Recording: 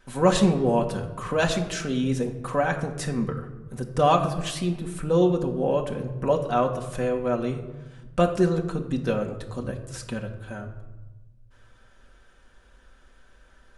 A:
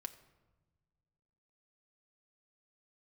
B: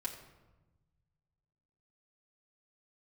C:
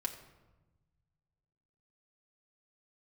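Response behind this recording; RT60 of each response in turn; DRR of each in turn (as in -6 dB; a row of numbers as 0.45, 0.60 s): C; 1.3, 1.1, 1.1 s; 6.0, -4.0, 0.5 dB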